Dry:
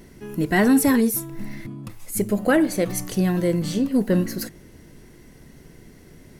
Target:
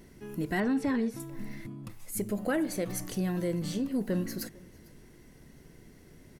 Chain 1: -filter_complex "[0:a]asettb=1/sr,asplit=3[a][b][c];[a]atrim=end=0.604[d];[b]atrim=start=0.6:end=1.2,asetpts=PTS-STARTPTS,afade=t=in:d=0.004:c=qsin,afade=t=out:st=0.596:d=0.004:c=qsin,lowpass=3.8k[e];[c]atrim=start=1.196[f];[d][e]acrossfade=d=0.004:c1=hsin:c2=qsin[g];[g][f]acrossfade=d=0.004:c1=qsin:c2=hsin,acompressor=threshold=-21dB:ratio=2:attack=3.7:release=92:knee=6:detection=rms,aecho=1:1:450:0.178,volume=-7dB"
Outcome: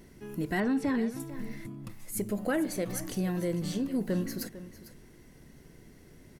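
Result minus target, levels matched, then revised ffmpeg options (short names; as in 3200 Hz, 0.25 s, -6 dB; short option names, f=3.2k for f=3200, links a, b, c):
echo-to-direct +9.5 dB
-filter_complex "[0:a]asettb=1/sr,asplit=3[a][b][c];[a]atrim=end=0.604[d];[b]atrim=start=0.6:end=1.2,asetpts=PTS-STARTPTS,afade=t=in:d=0.004:c=qsin,afade=t=out:st=0.596:d=0.004:c=qsin,lowpass=3.8k[e];[c]atrim=start=1.196[f];[d][e]acrossfade=d=0.004:c1=hsin:c2=qsin[g];[g][f]acrossfade=d=0.004:c1=qsin:c2=hsin,acompressor=threshold=-21dB:ratio=2:attack=3.7:release=92:knee=6:detection=rms,aecho=1:1:450:0.0596,volume=-7dB"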